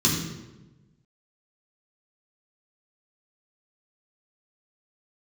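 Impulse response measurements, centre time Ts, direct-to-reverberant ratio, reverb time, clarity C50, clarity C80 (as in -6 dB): 50 ms, -5.0 dB, 1.1 s, 3.5 dB, 5.5 dB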